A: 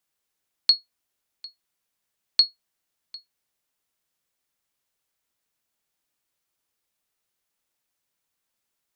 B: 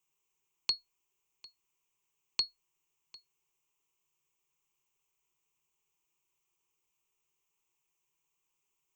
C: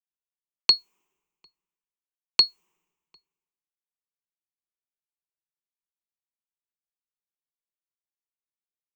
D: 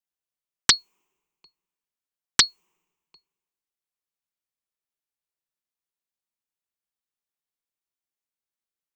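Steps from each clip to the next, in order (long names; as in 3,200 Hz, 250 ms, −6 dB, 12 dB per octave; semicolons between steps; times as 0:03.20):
EQ curve with evenly spaced ripples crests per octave 0.72, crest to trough 15 dB; level −5.5 dB
low shelf with overshoot 150 Hz −8.5 dB, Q 3; multiband upward and downward expander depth 100%; level +4.5 dB
highs frequency-modulated by the lows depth 0.77 ms; level +1.5 dB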